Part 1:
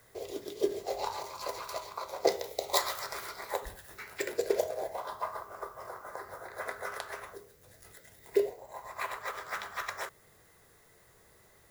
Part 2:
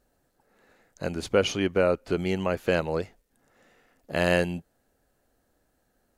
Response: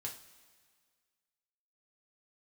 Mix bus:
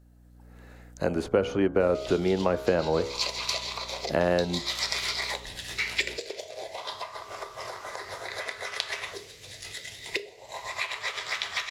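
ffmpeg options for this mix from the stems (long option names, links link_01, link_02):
-filter_complex "[0:a]lowpass=3300,acompressor=threshold=-42dB:ratio=16,aexciter=amount=9:drive=5.2:freq=2200,adelay=1800,volume=-1dB,asplit=2[link_01][link_02];[link_02]volume=-7dB[link_03];[1:a]bandreject=frequency=69.42:width_type=h:width=4,bandreject=frequency=138.84:width_type=h:width=4,bandreject=frequency=208.26:width_type=h:width=4,bandreject=frequency=277.68:width_type=h:width=4,bandreject=frequency=347.1:width_type=h:width=4,bandreject=frequency=416.52:width_type=h:width=4,bandreject=frequency=485.94:width_type=h:width=4,bandreject=frequency=555.36:width_type=h:width=4,bandreject=frequency=624.78:width_type=h:width=4,bandreject=frequency=694.2:width_type=h:width=4,bandreject=frequency=763.62:width_type=h:width=4,bandreject=frequency=833.04:width_type=h:width=4,bandreject=frequency=902.46:width_type=h:width=4,bandreject=frequency=971.88:width_type=h:width=4,bandreject=frequency=1041.3:width_type=h:width=4,bandreject=frequency=1110.72:width_type=h:width=4,bandreject=frequency=1180.14:width_type=h:width=4,bandreject=frequency=1249.56:width_type=h:width=4,bandreject=frequency=1318.98:width_type=h:width=4,bandreject=frequency=1388.4:width_type=h:width=4,bandreject=frequency=1457.82:width_type=h:width=4,bandreject=frequency=1527.24:width_type=h:width=4,bandreject=frequency=1596.66:width_type=h:width=4,acrossover=split=240|1500[link_04][link_05][link_06];[link_04]acompressor=threshold=-43dB:ratio=4[link_07];[link_05]acompressor=threshold=-28dB:ratio=4[link_08];[link_06]acompressor=threshold=-53dB:ratio=4[link_09];[link_07][link_08][link_09]amix=inputs=3:normalize=0,aeval=exprs='val(0)+0.00178*(sin(2*PI*60*n/s)+sin(2*PI*2*60*n/s)/2+sin(2*PI*3*60*n/s)/3+sin(2*PI*4*60*n/s)/4+sin(2*PI*5*60*n/s)/5)':channel_layout=same,volume=0dB,asplit=2[link_10][link_11];[link_11]apad=whole_len=595428[link_12];[link_01][link_12]sidechaincompress=threshold=-48dB:ratio=8:attack=16:release=127[link_13];[2:a]atrim=start_sample=2205[link_14];[link_03][link_14]afir=irnorm=-1:irlink=0[link_15];[link_13][link_10][link_15]amix=inputs=3:normalize=0,dynaudnorm=framelen=150:gausssize=5:maxgain=7dB"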